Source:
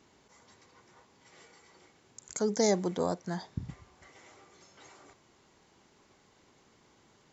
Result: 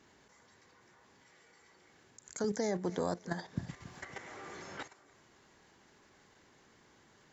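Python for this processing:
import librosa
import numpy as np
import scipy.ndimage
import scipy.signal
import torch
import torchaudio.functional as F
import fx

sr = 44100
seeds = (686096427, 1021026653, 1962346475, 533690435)

y = fx.level_steps(x, sr, step_db=11)
y = fx.peak_eq(y, sr, hz=1700.0, db=7.0, octaves=0.39)
y = fx.echo_feedback(y, sr, ms=278, feedback_pct=26, wet_db=-20.0)
y = fx.band_squash(y, sr, depth_pct=70, at=(2.44, 4.83))
y = F.gain(torch.from_numpy(y), 1.0).numpy()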